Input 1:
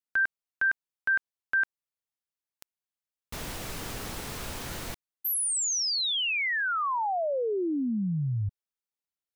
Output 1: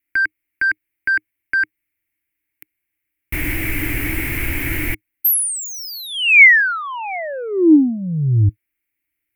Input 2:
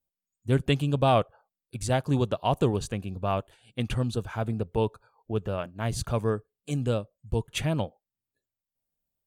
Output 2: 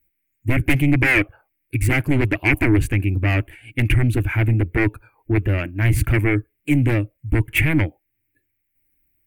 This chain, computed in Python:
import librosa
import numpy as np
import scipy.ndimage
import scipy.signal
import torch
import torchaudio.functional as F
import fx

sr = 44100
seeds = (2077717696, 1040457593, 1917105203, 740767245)

y = fx.fold_sine(x, sr, drive_db=13, ceiling_db=-10.0)
y = fx.curve_eq(y, sr, hz=(110.0, 210.0, 310.0, 440.0, 1200.0, 2200.0, 3700.0, 6500.0, 13000.0), db=(0, -14, 6, -14, -15, 8, -20, -19, 0))
y = y * 10.0 ** (1.0 / 20.0)